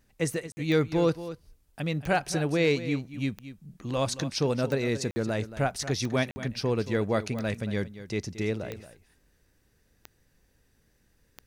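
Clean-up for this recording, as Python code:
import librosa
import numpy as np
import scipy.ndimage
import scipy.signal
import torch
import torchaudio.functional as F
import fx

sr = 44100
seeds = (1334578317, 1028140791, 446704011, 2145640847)

y = fx.fix_declip(x, sr, threshold_db=-14.5)
y = fx.fix_declick_ar(y, sr, threshold=10.0)
y = fx.fix_interpolate(y, sr, at_s=(0.52, 5.11, 6.31), length_ms=50.0)
y = fx.fix_echo_inverse(y, sr, delay_ms=227, level_db=-13.5)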